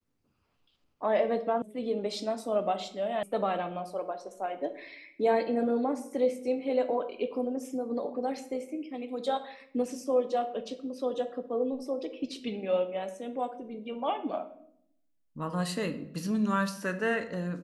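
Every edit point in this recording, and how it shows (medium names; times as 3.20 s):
1.62 s: sound stops dead
3.23 s: sound stops dead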